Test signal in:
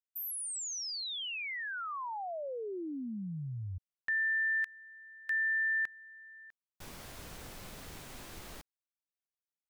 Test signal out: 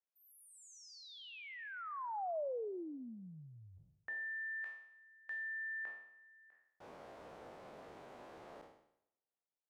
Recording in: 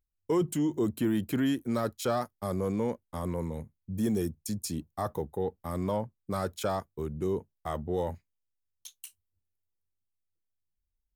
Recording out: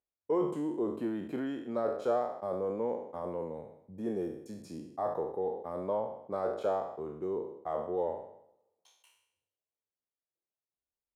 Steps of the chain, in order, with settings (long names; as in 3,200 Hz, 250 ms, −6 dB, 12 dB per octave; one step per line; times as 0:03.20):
peak hold with a decay on every bin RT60 0.72 s
resonant band-pass 610 Hz, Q 1.3
coupled-rooms reverb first 0.37 s, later 2 s, from −19 dB, DRR 20 dB